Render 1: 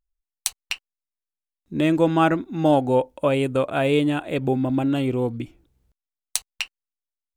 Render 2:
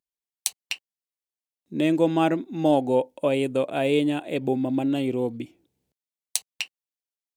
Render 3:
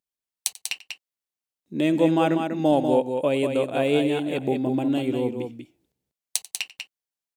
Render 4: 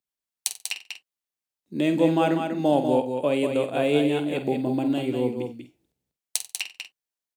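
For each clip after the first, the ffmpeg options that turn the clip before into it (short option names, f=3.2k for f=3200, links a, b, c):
-af "highpass=180,equalizer=f=1.3k:t=o:w=0.82:g=-9.5,volume=-1dB"
-af "aecho=1:1:91|193:0.112|0.501"
-filter_complex "[0:a]acrossover=split=150|3100[a][b][c];[a]acrusher=samples=10:mix=1:aa=0.000001[d];[d][b][c]amix=inputs=3:normalize=0,asplit=2[e][f];[f]adelay=48,volume=-10.5dB[g];[e][g]amix=inputs=2:normalize=0,volume=-1dB"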